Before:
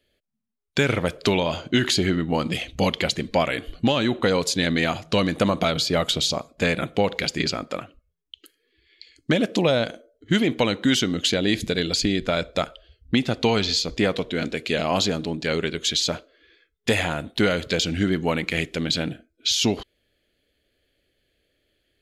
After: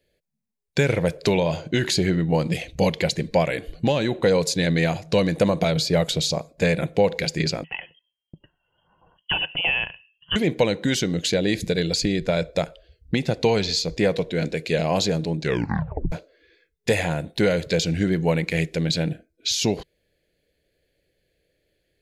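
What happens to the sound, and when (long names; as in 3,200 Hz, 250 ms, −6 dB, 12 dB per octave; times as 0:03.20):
0:07.64–0:10.36: voice inversion scrambler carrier 3,200 Hz
0:15.39: tape stop 0.73 s
whole clip: thirty-one-band graphic EQ 160 Hz +8 dB, 250 Hz −6 dB, 500 Hz +5 dB, 1,250 Hz −11 dB, 3,150 Hz −8 dB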